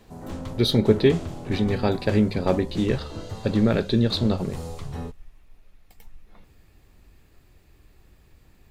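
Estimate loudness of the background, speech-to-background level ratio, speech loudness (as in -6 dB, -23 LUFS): -36.0 LUFS, 12.5 dB, -23.5 LUFS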